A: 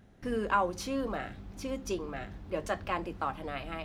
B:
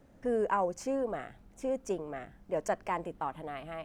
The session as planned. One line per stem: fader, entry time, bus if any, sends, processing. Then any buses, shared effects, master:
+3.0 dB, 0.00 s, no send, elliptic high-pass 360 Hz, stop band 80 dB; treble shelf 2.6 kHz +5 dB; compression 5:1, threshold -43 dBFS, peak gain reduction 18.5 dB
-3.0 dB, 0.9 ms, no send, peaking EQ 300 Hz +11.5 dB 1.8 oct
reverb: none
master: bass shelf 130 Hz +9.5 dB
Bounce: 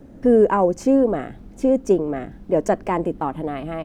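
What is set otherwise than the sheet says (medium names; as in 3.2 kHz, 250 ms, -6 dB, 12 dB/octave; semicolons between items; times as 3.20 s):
stem A +3.0 dB -> -6.0 dB; stem B -3.0 dB -> +6.5 dB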